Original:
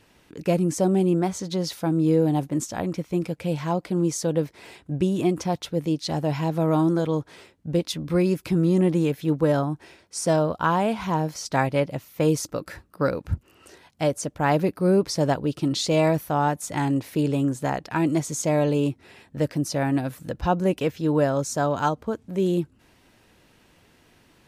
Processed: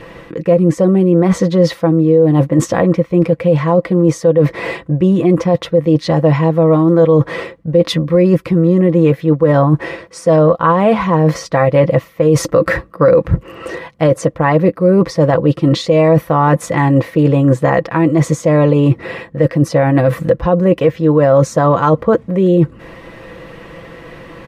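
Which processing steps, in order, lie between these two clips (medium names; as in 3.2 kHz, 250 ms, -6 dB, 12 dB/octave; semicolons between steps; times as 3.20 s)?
tone controls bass +3 dB, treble -14 dB; comb 6 ms, depth 50%; reverse; compression 16:1, threshold -28 dBFS, peak gain reduction 18 dB; reverse; small resonant body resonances 520/1100/1900 Hz, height 12 dB, ringing for 30 ms; loudness maximiser +20.5 dB; trim -1 dB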